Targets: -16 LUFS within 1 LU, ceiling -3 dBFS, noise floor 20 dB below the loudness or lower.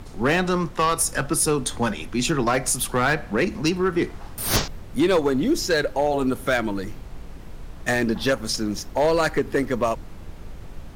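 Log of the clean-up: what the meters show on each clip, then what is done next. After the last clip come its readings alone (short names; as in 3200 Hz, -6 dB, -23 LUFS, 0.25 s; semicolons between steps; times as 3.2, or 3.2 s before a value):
clipped 0.8%; flat tops at -13.5 dBFS; noise floor -40 dBFS; noise floor target -43 dBFS; loudness -23.0 LUFS; peak -13.5 dBFS; loudness target -16.0 LUFS
-> clip repair -13.5 dBFS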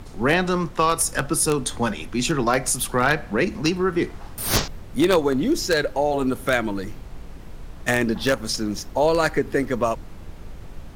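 clipped 0.0%; noise floor -40 dBFS; noise floor target -43 dBFS
-> noise print and reduce 6 dB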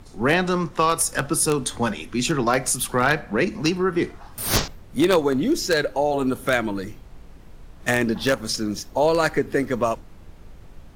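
noise floor -45 dBFS; loudness -22.5 LUFS; peak -4.5 dBFS; loudness target -16.0 LUFS
-> gain +6.5 dB; limiter -3 dBFS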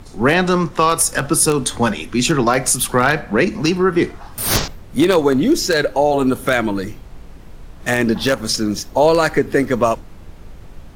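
loudness -16.5 LUFS; peak -3.0 dBFS; noise floor -38 dBFS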